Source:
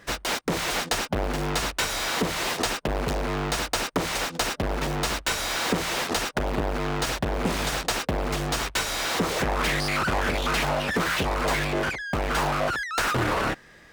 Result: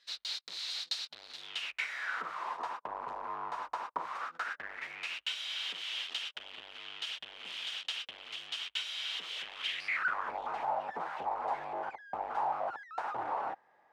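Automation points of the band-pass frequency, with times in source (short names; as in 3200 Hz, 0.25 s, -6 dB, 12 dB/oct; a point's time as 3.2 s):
band-pass, Q 5.8
1.32 s 4100 Hz
2.46 s 1000 Hz
4.01 s 1000 Hz
5.31 s 3100 Hz
9.73 s 3100 Hz
10.36 s 830 Hz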